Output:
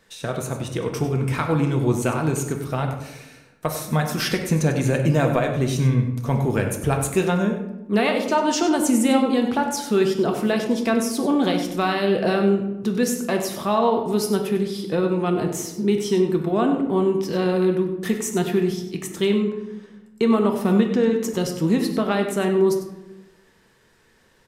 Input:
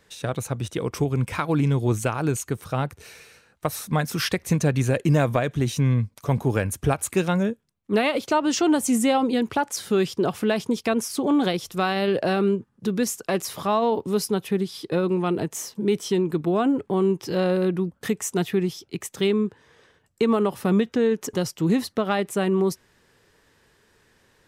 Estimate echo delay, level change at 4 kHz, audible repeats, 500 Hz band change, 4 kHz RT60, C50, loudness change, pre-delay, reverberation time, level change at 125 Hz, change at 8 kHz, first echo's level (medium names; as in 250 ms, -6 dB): 97 ms, +1.5 dB, 1, +2.5 dB, 0.55 s, 6.5 dB, +2.0 dB, 3 ms, 1.0 s, +1.5 dB, +1.0 dB, -11.5 dB